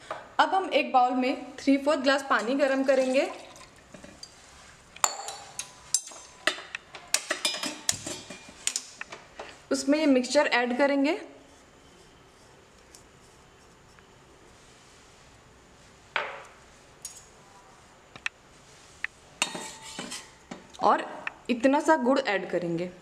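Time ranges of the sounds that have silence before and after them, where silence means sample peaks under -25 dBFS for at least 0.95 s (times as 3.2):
5.04–11.15
16.16–17.05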